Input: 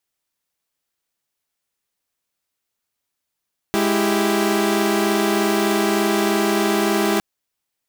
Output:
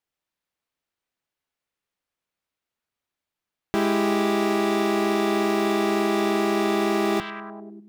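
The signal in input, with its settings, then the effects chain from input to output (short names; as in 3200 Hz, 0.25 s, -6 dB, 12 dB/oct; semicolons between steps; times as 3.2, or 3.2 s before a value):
chord G#3/E4/G4 saw, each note -18.5 dBFS 3.46 s
high shelf 4300 Hz -11.5 dB; resonator 85 Hz, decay 0.32 s, mix 30%; delay with a stepping band-pass 0.1 s, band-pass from 3100 Hz, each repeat -0.7 oct, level -4 dB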